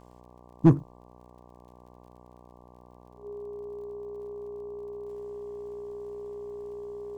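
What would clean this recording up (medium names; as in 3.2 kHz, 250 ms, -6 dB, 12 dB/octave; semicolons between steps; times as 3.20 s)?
clip repair -9.5 dBFS; de-click; de-hum 61 Hz, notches 19; band-stop 410 Hz, Q 30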